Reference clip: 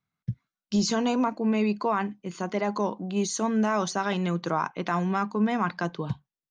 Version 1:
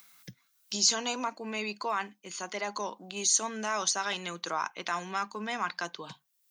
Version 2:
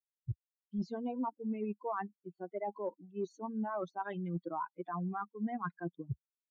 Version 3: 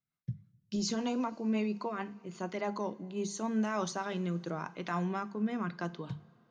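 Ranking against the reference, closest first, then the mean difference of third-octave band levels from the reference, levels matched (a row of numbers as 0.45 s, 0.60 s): 3, 1, 2; 2.5 dB, 6.5 dB, 10.0 dB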